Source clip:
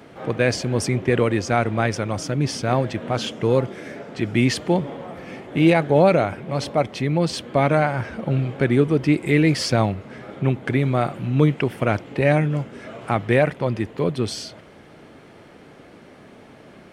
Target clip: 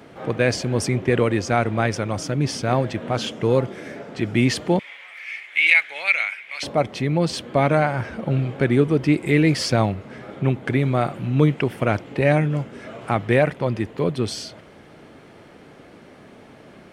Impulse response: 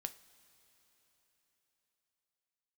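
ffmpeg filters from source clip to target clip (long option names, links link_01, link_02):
-filter_complex "[0:a]asettb=1/sr,asplit=3[link_01][link_02][link_03];[link_01]atrim=end=4.794[link_04];[link_02]atrim=start=4.79:end=6.63,asetpts=PTS-STARTPTS,afade=type=in:duration=0.004:curve=qsin,afade=type=out:start_time=1.836:duration=0.004:curve=qsin,highpass=frequency=2200:width_type=q:width=5.2[link_05];[link_03]atrim=start=6.626[link_06];[link_04][link_05]acrossfade=duration=0.004:curve1=hsin:curve2=qsin[link_07];[link_07][link_06]acrossfade=duration=0.004:curve1=qsin:curve2=hsin"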